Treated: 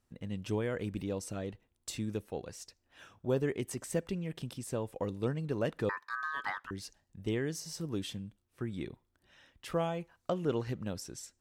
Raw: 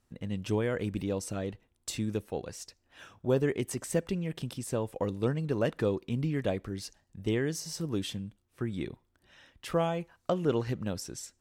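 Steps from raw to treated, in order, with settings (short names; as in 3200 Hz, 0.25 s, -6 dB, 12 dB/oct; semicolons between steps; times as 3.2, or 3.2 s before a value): 5.89–6.71 ring modulator 1400 Hz; gain -4 dB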